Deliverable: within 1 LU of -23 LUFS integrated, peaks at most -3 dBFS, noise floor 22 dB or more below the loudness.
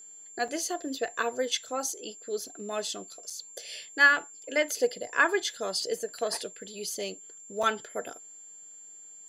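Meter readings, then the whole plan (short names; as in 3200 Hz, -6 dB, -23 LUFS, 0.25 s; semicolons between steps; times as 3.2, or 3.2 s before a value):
dropouts 3; longest dropout 4.6 ms; steady tone 7300 Hz; tone level -46 dBFS; loudness -29.5 LUFS; peak -8.5 dBFS; loudness target -23.0 LUFS
-> interpolate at 0.48/3.3/7.63, 4.6 ms; notch 7300 Hz, Q 30; gain +6.5 dB; limiter -3 dBFS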